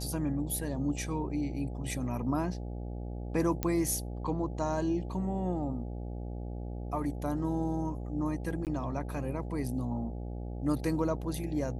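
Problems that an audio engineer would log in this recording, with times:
buzz 60 Hz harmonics 14 -38 dBFS
3.63 s: pop -15 dBFS
8.65–8.67 s: dropout 18 ms

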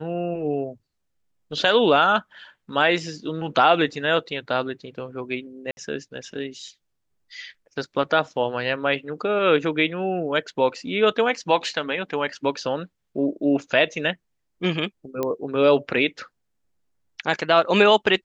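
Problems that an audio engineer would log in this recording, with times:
5.71–5.77 s: dropout 61 ms
15.23 s: pop -12 dBFS

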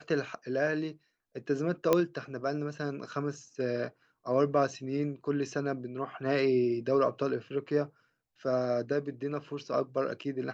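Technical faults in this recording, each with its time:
1.93 s: pop -11 dBFS

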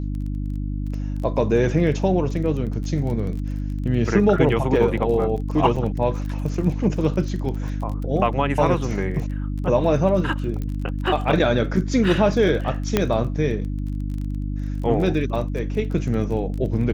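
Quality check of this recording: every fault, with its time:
crackle 25 per s -30 dBFS
hum 50 Hz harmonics 6 -26 dBFS
5.76 s: dropout 4.7 ms
10.62 s: pop -18 dBFS
12.97 s: pop -4 dBFS

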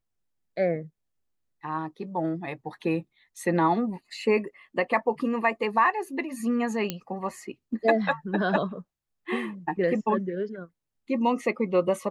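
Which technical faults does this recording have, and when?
6.90 s: pop -12 dBFS

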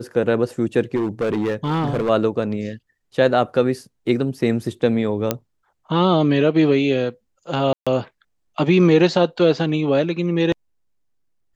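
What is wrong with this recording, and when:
0.96–2.10 s: clipped -17 dBFS
5.31 s: pop -4 dBFS
7.73–7.87 s: dropout 136 ms

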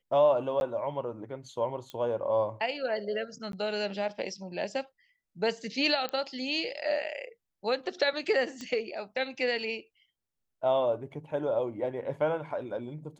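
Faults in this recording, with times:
0.60–0.61 s: dropout 11 ms
1.90 s: pop -26 dBFS
3.52–3.53 s: dropout 12 ms
6.09 s: pop -19 dBFS
8.61 s: pop -26 dBFS

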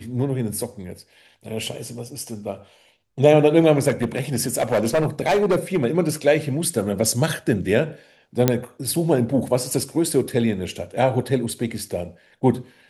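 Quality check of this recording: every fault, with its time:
3.88–5.84 s: clipped -14 dBFS
8.48 s: pop -2 dBFS

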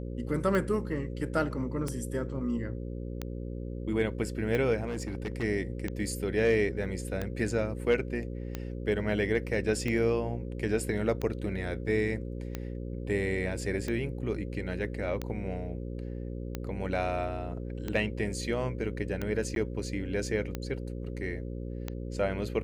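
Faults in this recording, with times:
buzz 60 Hz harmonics 9 -37 dBFS
tick 45 rpm -19 dBFS
4.87–5.44 s: clipped -29.5 dBFS
19.55–19.56 s: dropout 12 ms

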